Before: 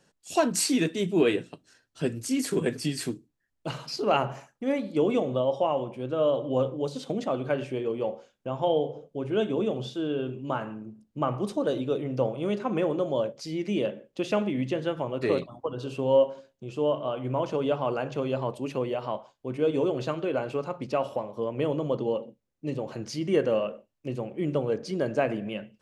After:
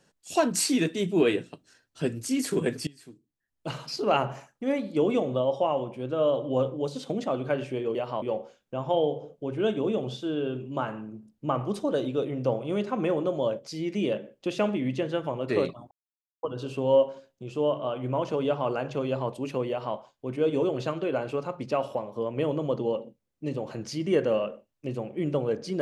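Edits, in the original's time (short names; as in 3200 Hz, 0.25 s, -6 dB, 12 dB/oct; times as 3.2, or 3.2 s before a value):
2.87–3.72 fade in quadratic, from -21.5 dB
15.64 insert silence 0.52 s
18.9–19.17 copy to 7.95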